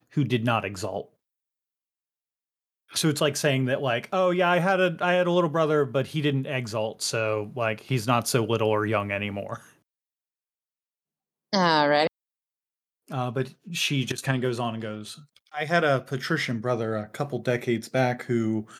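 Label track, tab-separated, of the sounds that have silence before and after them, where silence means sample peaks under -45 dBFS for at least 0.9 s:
2.900000	9.700000	sound
11.530000	12.070000	sound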